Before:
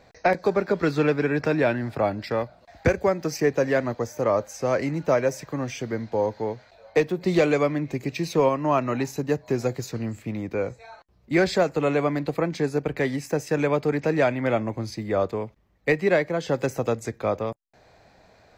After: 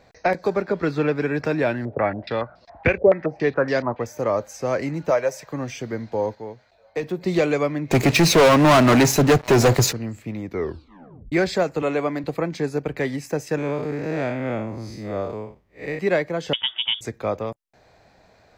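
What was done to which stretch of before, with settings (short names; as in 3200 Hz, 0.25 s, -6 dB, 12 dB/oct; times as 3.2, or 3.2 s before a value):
0.62–1.16 high shelf 6000 Hz -10 dB
1.85–4.06 stepped low-pass 7.1 Hz 510–5100 Hz
5.1–5.51 resonant low shelf 410 Hz -8 dB, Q 1.5
6.35–7.03 gain -6.5 dB
7.91–9.93 sample leveller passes 5
10.48 tape stop 0.84 s
11.82–12.24 HPF 180 Hz
13.58–15.99 time blur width 0.146 s
16.53–17.01 inverted band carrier 3500 Hz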